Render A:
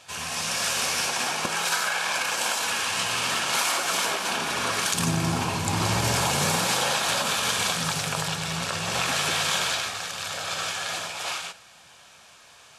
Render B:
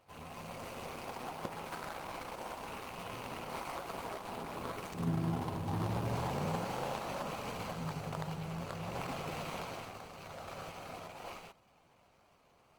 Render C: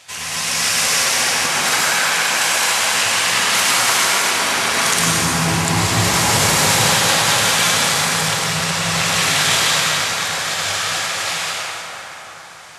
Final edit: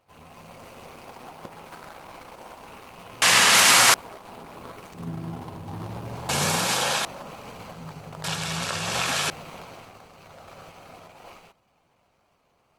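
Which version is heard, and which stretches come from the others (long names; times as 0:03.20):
B
0:03.22–0:03.94: punch in from C
0:06.29–0:07.05: punch in from A
0:08.24–0:09.30: punch in from A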